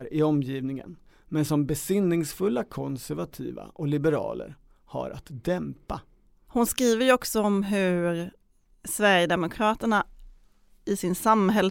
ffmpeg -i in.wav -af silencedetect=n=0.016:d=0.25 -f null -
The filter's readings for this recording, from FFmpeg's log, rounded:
silence_start: 0.92
silence_end: 1.32 | silence_duration: 0.40
silence_start: 4.51
silence_end: 4.94 | silence_duration: 0.43
silence_start: 5.99
silence_end: 6.55 | silence_duration: 0.56
silence_start: 8.29
silence_end: 8.85 | silence_duration: 0.56
silence_start: 10.02
silence_end: 10.87 | silence_duration: 0.85